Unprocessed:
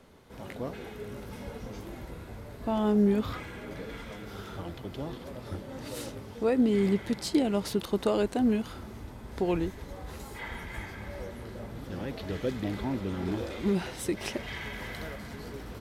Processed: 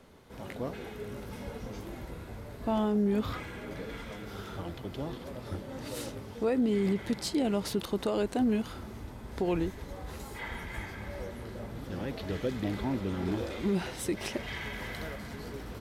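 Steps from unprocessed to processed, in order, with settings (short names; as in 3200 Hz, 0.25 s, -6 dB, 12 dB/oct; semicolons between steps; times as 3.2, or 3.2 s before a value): limiter -20.5 dBFS, peak gain reduction 6.5 dB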